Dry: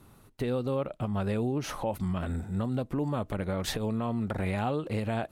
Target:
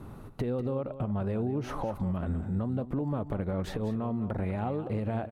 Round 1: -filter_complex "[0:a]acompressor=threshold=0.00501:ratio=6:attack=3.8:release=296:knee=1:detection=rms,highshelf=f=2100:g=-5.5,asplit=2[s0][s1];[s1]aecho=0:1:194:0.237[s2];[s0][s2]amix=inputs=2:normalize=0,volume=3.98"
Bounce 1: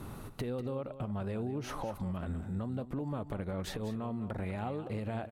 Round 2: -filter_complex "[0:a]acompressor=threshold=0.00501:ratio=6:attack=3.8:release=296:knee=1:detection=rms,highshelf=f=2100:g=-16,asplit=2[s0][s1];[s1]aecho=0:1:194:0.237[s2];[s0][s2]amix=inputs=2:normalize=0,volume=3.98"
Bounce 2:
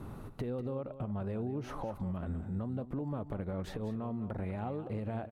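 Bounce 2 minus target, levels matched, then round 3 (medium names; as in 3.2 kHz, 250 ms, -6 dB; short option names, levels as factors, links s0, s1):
compression: peak gain reduction +6 dB
-filter_complex "[0:a]acompressor=threshold=0.0112:ratio=6:attack=3.8:release=296:knee=1:detection=rms,highshelf=f=2100:g=-16,asplit=2[s0][s1];[s1]aecho=0:1:194:0.237[s2];[s0][s2]amix=inputs=2:normalize=0,volume=3.98"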